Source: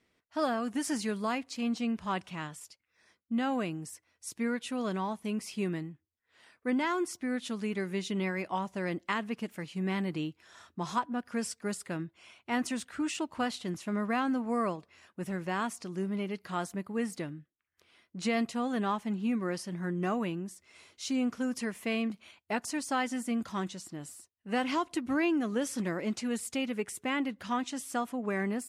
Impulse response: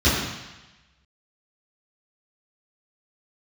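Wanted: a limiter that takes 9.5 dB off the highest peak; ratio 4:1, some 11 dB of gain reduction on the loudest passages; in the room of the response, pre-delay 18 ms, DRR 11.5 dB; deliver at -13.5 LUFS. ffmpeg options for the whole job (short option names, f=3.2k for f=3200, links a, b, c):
-filter_complex "[0:a]acompressor=threshold=-39dB:ratio=4,alimiter=level_in=10dB:limit=-24dB:level=0:latency=1,volume=-10dB,asplit=2[a][b];[1:a]atrim=start_sample=2205,adelay=18[c];[b][c]afir=irnorm=-1:irlink=0,volume=-31dB[d];[a][d]amix=inputs=2:normalize=0,volume=28.5dB"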